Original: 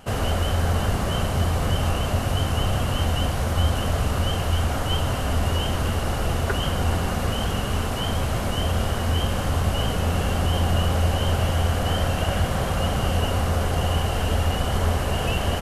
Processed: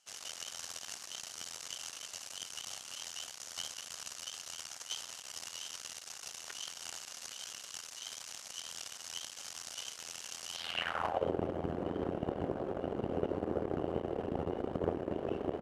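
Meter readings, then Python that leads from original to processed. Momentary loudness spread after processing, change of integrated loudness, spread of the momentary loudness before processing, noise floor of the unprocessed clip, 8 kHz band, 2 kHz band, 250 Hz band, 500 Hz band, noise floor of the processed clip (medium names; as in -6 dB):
7 LU, -16.0 dB, 3 LU, -26 dBFS, -6.5 dB, -16.5 dB, -13.0 dB, -11.0 dB, -51 dBFS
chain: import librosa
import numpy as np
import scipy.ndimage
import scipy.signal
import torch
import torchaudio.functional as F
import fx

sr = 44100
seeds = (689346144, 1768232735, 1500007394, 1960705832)

y = fx.cheby_harmonics(x, sr, harmonics=(3, 4, 6, 8), levels_db=(-13, -11, -19, -29), full_scale_db=-9.0)
y = fx.filter_sweep_bandpass(y, sr, from_hz=6100.0, to_hz=370.0, start_s=10.52, end_s=11.33, q=2.4)
y = y * librosa.db_to_amplitude(2.0)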